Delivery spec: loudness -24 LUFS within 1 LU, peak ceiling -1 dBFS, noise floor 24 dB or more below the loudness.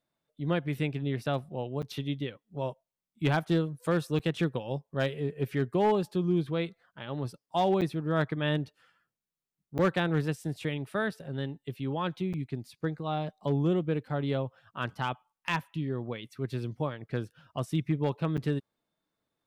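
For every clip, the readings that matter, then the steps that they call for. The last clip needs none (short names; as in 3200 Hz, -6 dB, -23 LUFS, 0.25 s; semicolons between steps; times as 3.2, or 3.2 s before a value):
clipped 0.3%; flat tops at -19.0 dBFS; dropouts 6; longest dropout 7.5 ms; loudness -31.5 LUFS; peak -19.0 dBFS; loudness target -24.0 LUFS
-> clip repair -19 dBFS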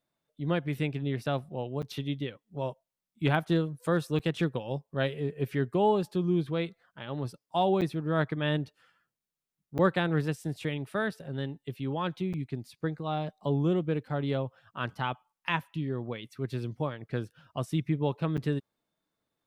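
clipped 0.0%; dropouts 6; longest dropout 7.5 ms
-> interpolate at 1.82/4.19/7.81/9.78/12.33/18.37, 7.5 ms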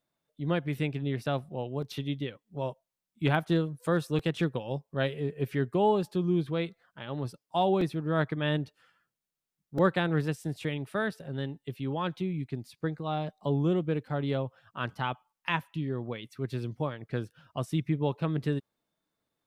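dropouts 0; loudness -31.5 LUFS; peak -11.0 dBFS; loudness target -24.0 LUFS
-> gain +7.5 dB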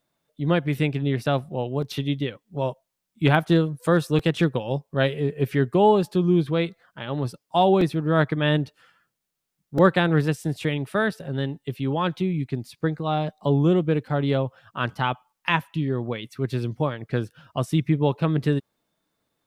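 loudness -24.0 LUFS; peak -3.5 dBFS; noise floor -81 dBFS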